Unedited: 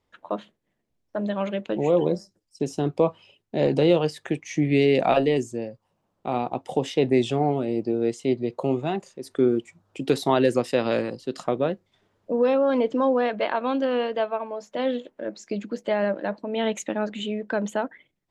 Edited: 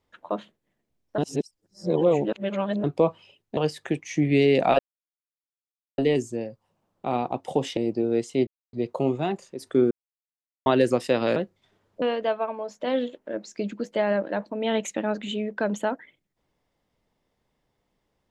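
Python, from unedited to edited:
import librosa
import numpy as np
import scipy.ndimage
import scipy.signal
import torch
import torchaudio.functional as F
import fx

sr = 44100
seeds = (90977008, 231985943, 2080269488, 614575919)

y = fx.edit(x, sr, fx.reverse_span(start_s=1.18, length_s=1.66),
    fx.cut(start_s=3.57, length_s=0.4),
    fx.insert_silence(at_s=5.19, length_s=1.19),
    fx.cut(start_s=6.98, length_s=0.69),
    fx.insert_silence(at_s=8.37, length_s=0.26),
    fx.silence(start_s=9.55, length_s=0.75),
    fx.cut(start_s=11.0, length_s=0.66),
    fx.cut(start_s=12.32, length_s=1.62), tone=tone)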